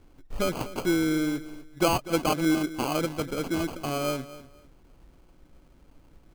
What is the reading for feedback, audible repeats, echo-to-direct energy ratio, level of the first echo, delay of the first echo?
23%, 2, −16.0 dB, −16.0 dB, 245 ms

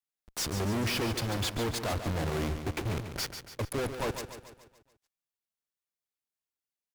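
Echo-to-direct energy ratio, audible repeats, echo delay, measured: −8.0 dB, 5, 143 ms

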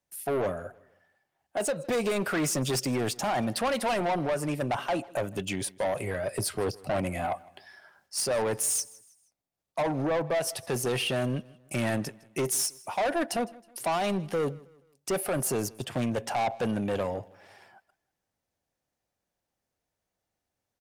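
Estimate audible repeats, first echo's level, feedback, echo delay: 2, −23.0 dB, 40%, 159 ms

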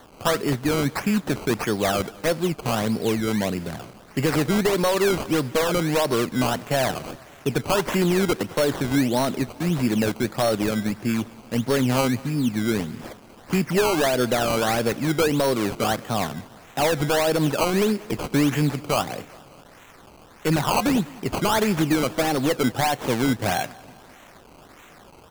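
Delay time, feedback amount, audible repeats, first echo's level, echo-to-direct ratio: 197 ms, 57%, 3, −22.5 dB, −21.0 dB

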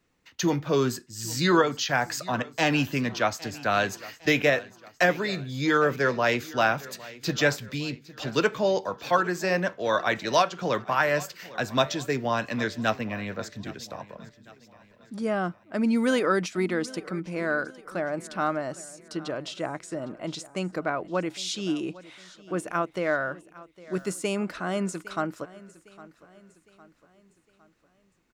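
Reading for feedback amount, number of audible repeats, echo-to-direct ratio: 47%, 3, −18.5 dB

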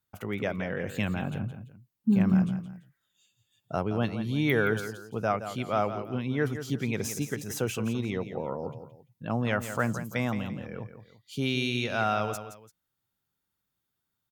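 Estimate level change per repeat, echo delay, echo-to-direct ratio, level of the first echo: −9.5 dB, 170 ms, −10.0 dB, −10.5 dB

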